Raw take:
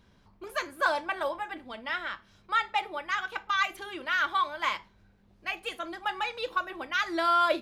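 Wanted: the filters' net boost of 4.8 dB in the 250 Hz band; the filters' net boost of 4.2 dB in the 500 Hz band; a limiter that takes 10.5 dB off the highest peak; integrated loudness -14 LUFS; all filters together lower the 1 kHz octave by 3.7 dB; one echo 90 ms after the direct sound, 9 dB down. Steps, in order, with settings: peaking EQ 250 Hz +3.5 dB; peaking EQ 500 Hz +7.5 dB; peaking EQ 1 kHz -7 dB; peak limiter -22 dBFS; delay 90 ms -9 dB; trim +19 dB

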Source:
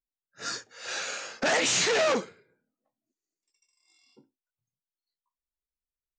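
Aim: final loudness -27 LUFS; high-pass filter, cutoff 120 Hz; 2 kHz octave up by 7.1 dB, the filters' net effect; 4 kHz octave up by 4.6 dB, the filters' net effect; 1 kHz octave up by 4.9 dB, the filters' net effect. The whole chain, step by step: high-pass 120 Hz; peaking EQ 1 kHz +4.5 dB; peaking EQ 2 kHz +6.5 dB; peaking EQ 4 kHz +3.5 dB; trim -4.5 dB

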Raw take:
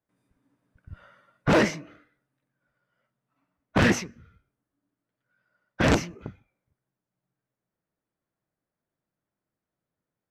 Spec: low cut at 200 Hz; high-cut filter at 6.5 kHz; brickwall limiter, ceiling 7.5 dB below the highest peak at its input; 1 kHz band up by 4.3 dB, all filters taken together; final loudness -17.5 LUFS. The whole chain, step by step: high-pass 200 Hz; low-pass 6.5 kHz; peaking EQ 1 kHz +5.5 dB; trim +10.5 dB; peak limiter -3 dBFS

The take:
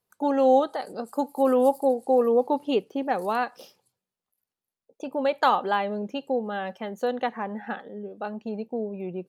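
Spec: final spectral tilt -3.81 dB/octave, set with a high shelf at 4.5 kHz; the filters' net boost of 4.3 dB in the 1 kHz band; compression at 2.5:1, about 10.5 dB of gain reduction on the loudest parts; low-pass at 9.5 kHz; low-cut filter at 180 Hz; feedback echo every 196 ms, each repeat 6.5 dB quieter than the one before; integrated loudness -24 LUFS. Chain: high-pass 180 Hz; low-pass 9.5 kHz; peaking EQ 1 kHz +6 dB; treble shelf 4.5 kHz -5 dB; compression 2.5:1, threshold -28 dBFS; feedback delay 196 ms, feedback 47%, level -6.5 dB; trim +6 dB

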